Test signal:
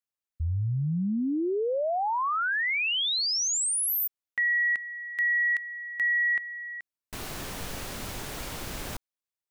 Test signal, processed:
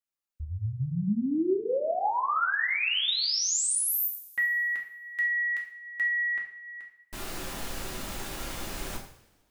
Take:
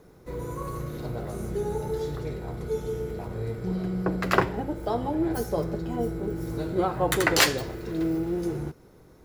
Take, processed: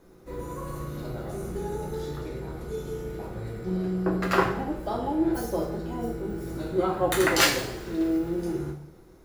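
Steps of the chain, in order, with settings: two-slope reverb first 0.54 s, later 1.7 s, from -19 dB, DRR -1.5 dB; gain -4 dB

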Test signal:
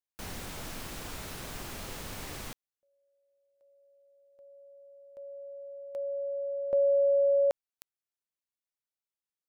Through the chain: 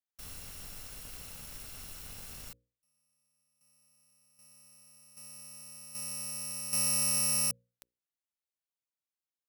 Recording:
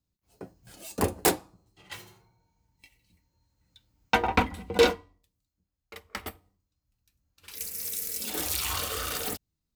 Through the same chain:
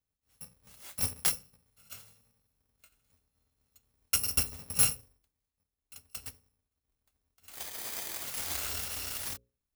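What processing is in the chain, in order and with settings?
FFT order left unsorted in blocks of 128 samples; notches 60/120/180/240/300/360/420/480/540 Hz; gain -5 dB

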